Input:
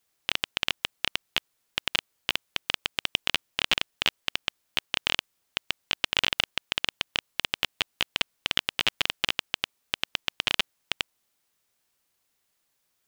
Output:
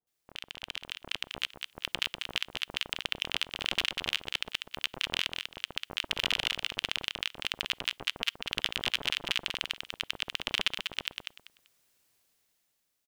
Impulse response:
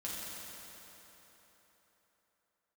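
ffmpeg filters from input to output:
-filter_complex "[0:a]alimiter=limit=0.251:level=0:latency=1:release=22,acrossover=split=1100[s0][s1];[s1]adelay=70[s2];[s0][s2]amix=inputs=2:normalize=0,asplit=2[s3][s4];[1:a]atrim=start_sample=2205,atrim=end_sample=3087[s5];[s4][s5]afir=irnorm=-1:irlink=0,volume=0.0562[s6];[s3][s6]amix=inputs=2:normalize=0,dynaudnorm=f=220:g=9:m=3.76,asplit=2[s7][s8];[s8]aecho=0:1:194|388|582:0.501|0.11|0.0243[s9];[s7][s9]amix=inputs=2:normalize=0,volume=0.422"

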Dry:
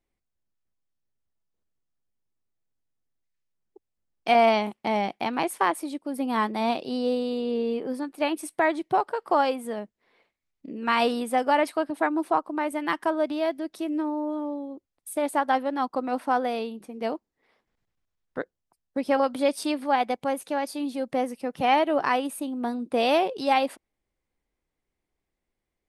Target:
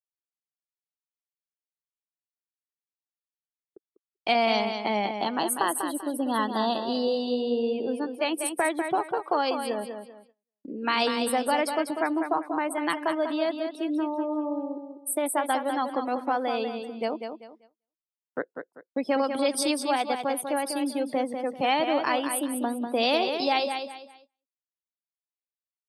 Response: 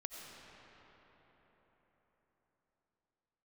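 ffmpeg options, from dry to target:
-filter_complex "[0:a]asettb=1/sr,asplit=3[s0][s1][s2];[s0]atrim=end=5.204[s3];[s1]atrim=start=5.2:end=7.62,asetpts=PTS-STARTPTS,afade=t=in:d=0.004:c=qsin,afade=t=out:st=2.416:d=0.004:c=qsin,asuperstop=centerf=2300:order=8:qfactor=3.7[s4];[s2]atrim=start=7.616[s5];[s3][s4]acrossfade=d=0.004:c1=hsin:c2=qsin[s6];[s6][s5]acrossfade=d=0.004:c1=qsin:c2=hsin,afftdn=nr=22:nf=-42,highpass=150,bass=f=250:g=-5,treble=f=4000:g=7,acrossover=split=250|3000[s7][s8][s9];[s8]acompressor=threshold=0.0282:ratio=2[s10];[s7][s10][s9]amix=inputs=3:normalize=0,aecho=1:1:195|390|585|780:0.447|0.13|0.0376|0.0109,agate=range=0.0631:threshold=0.00141:ratio=16:detection=peak,volume=1.41"

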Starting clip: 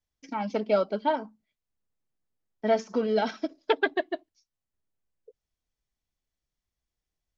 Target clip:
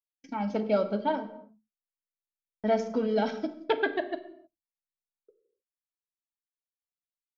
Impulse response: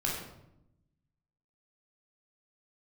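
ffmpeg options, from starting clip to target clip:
-filter_complex "[0:a]agate=range=0.0126:threshold=0.00355:ratio=16:detection=peak,lowshelf=f=370:g=6.5,asplit=2[s0][s1];[1:a]atrim=start_sample=2205,afade=t=out:st=0.37:d=0.01,atrim=end_sample=16758[s2];[s1][s2]afir=irnorm=-1:irlink=0,volume=0.237[s3];[s0][s3]amix=inputs=2:normalize=0,volume=0.501"

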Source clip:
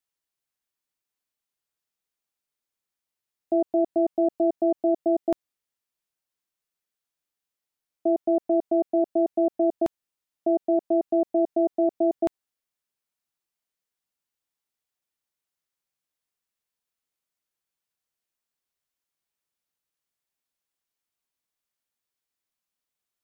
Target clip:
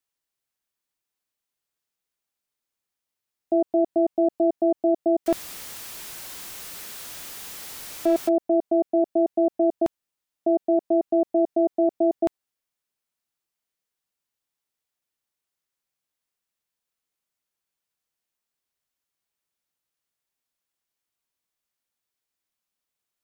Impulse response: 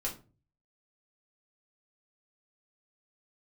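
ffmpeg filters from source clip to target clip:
-filter_complex "[0:a]asettb=1/sr,asplit=3[s0][s1][s2];[s0]atrim=end=5.264[s3];[s1]atrim=start=5.26:end=8.29,asetpts=PTS-STARTPTS,afade=t=in:d=0.004:c=qsin,afade=t=out:st=3.026:d=0.004:c=qsin,aeval=exprs='val(0)+0.5*0.0237*sgn(val(0))':c=same[s4];[s2]atrim=start=8.286[s5];[s3][s4]acrossfade=d=0.004:c1=hsin:c2=qsin[s6];[s6][s5]acrossfade=d=0.004:c1=qsin:c2=hsin,volume=1.19"

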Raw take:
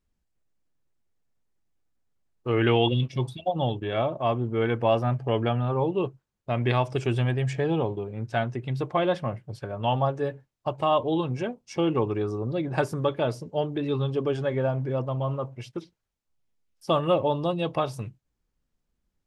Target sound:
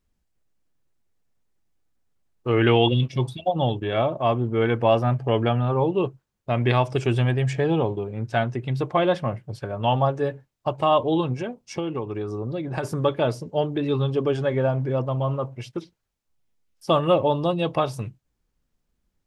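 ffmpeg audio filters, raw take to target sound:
-filter_complex "[0:a]asplit=3[s0][s1][s2];[s0]afade=t=out:st=11.33:d=0.02[s3];[s1]acompressor=threshold=0.0355:ratio=6,afade=t=in:st=11.33:d=0.02,afade=t=out:st=12.83:d=0.02[s4];[s2]afade=t=in:st=12.83:d=0.02[s5];[s3][s4][s5]amix=inputs=3:normalize=0,volume=1.5"

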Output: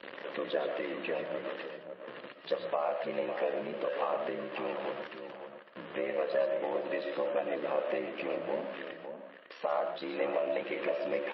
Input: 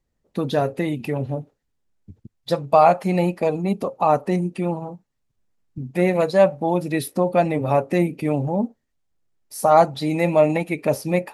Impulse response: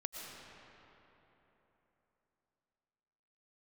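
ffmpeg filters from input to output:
-filter_complex "[0:a]aeval=exprs='val(0)+0.5*0.0562*sgn(val(0))':c=same,acompressor=threshold=0.0794:ratio=5,aeval=exprs='val(0)*sin(2*PI*34*n/s)':c=same,highpass=f=250:w=0.5412,highpass=f=250:w=1.3066,equalizer=f=260:t=q:w=4:g=-7,equalizer=f=530:t=q:w=4:g=8,equalizer=f=810:t=q:w=4:g=-3,equalizer=f=1100:t=q:w=4:g=5,equalizer=f=1700:t=q:w=4:g=7,equalizer=f=2900:t=q:w=4:g=6,lowpass=f=3500:w=0.5412,lowpass=f=3500:w=1.3066,asplit=2[s0][s1];[s1]adelay=553.9,volume=0.398,highshelf=f=4000:g=-12.5[s2];[s0][s2]amix=inputs=2:normalize=0[s3];[1:a]atrim=start_sample=2205,atrim=end_sample=6615[s4];[s3][s4]afir=irnorm=-1:irlink=0,volume=0.631" -ar 22050 -c:a libmp3lame -b:a 24k

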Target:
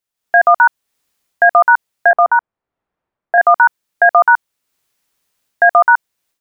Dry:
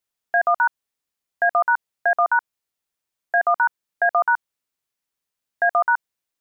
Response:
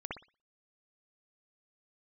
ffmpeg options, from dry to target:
-filter_complex "[0:a]asettb=1/sr,asplit=3[s0][s1][s2];[s0]atrim=end=2.114[s3];[s1]atrim=start=2.11:end=3.38,asetpts=PTS-STARTPTS,afade=t=in:d=0.004:c=qsin,afade=t=out:st=1.266:d=0.004:c=qsin,lowpass=1200[s4];[s2]atrim=start=3.376[s5];[s3][s4]acrossfade=d=0.004:c1=hsin:c2=qsin[s6];[s6][s5]acrossfade=d=0.004:c1=qsin:c2=hsin,dynaudnorm=f=140:g=3:m=5.62"

